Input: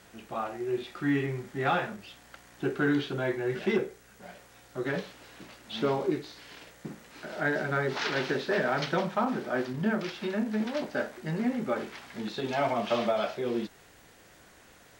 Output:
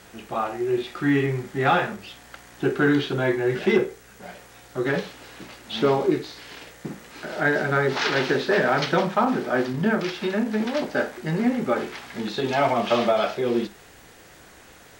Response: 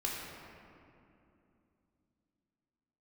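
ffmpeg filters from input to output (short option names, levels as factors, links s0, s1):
-filter_complex "[0:a]asplit=2[s0][s1];[1:a]atrim=start_sample=2205,atrim=end_sample=3528[s2];[s1][s2]afir=irnorm=-1:irlink=0,volume=0.266[s3];[s0][s3]amix=inputs=2:normalize=0,volume=1.88"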